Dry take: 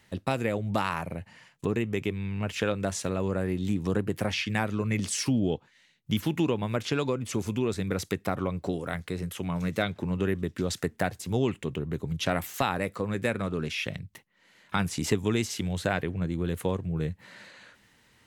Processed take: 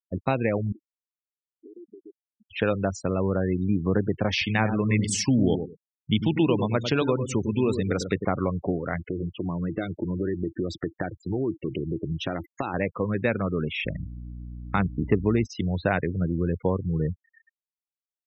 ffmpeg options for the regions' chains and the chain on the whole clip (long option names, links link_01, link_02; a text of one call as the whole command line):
ffmpeg -i in.wav -filter_complex "[0:a]asettb=1/sr,asplit=3[link_01][link_02][link_03];[link_01]atrim=end=0.724[link_04];[link_02]atrim=start=0.72:end=2.51,asetpts=PTS-STARTPTS,afade=type=in:duration=0.004:curve=qsin,afade=type=out:start_time=1.786:duration=0.004:curve=qsin,acompressor=threshold=-40dB:ratio=5:attack=3.2:release=140:knee=1:detection=peak,bandpass=frequency=340:width_type=q:width=3.4[link_05];[link_03]atrim=start=2.506[link_06];[link_04][link_05]acrossfade=duration=0.004:curve1=hsin:curve2=qsin[link_07];[link_07][link_06]acrossfade=duration=0.004:curve1=qsin:curve2=hsin,asettb=1/sr,asplit=3[link_08][link_09][link_10];[link_08]atrim=end=4.314[link_11];[link_09]atrim=start=4.31:end=8.25,asetpts=PTS-STARTPTS,afade=type=in:duration=0.004:curve=qsin,afade=type=out:start_time=3.936:duration=0.004:curve=qsin,highshelf=frequency=3800:gain=7.5,asplit=2[link_12][link_13];[link_13]adelay=101,lowpass=frequency=1100:poles=1,volume=-7dB,asplit=2[link_14][link_15];[link_15]adelay=101,lowpass=frequency=1100:poles=1,volume=0.25,asplit=2[link_16][link_17];[link_17]adelay=101,lowpass=frequency=1100:poles=1,volume=0.25[link_18];[link_12][link_14][link_16][link_18]amix=inputs=4:normalize=0,atrim=end_sample=173754[link_19];[link_10]atrim=start=8.246[link_20];[link_11][link_19]acrossfade=duration=0.004:curve1=hsin:curve2=qsin[link_21];[link_21][link_20]acrossfade=duration=0.004:curve1=qsin:curve2=hsin,asettb=1/sr,asplit=3[link_22][link_23][link_24];[link_22]atrim=end=8.994[link_25];[link_23]atrim=start=8.99:end=12.74,asetpts=PTS-STARTPTS,afade=type=in:duration=0.004:curve=qsin,afade=type=out:start_time=3.746:duration=0.004:curve=qsin,equalizer=frequency=330:width=5.3:gain=13.5,acompressor=threshold=-29dB:ratio=3:attack=3.2:release=140:knee=1:detection=peak,agate=range=-33dB:threshold=-46dB:ratio=3:release=100:detection=peak[link_26];[link_24]atrim=start=12.736[link_27];[link_25][link_26]acrossfade=duration=0.004:curve1=hsin:curve2=qsin[link_28];[link_28][link_27]acrossfade=duration=0.004:curve1=qsin:curve2=hsin,asettb=1/sr,asplit=3[link_29][link_30][link_31];[link_29]atrim=end=13.854[link_32];[link_30]atrim=start=13.85:end=15.45,asetpts=PTS-STARTPTS,afade=type=in:duration=0.004:curve=qsin,afade=type=out:start_time=1.596:duration=0.004:curve=qsin,adynamicsmooth=sensitivity=1.5:basefreq=1300,aeval=exprs='val(0)+0.01*(sin(2*PI*60*n/s)+sin(2*PI*2*60*n/s)/2+sin(2*PI*3*60*n/s)/3+sin(2*PI*4*60*n/s)/4+sin(2*PI*5*60*n/s)/5)':channel_layout=same[link_33];[link_31]atrim=start=15.446[link_34];[link_32][link_33]acrossfade=duration=0.004:curve1=hsin:curve2=qsin[link_35];[link_35][link_34]acrossfade=duration=0.004:curve1=qsin:curve2=hsin,lowpass=frequency=3500:poles=1,afftfilt=real='re*gte(hypot(re,im),0.02)':imag='im*gte(hypot(re,im),0.02)':win_size=1024:overlap=0.75,volume=4dB" out.wav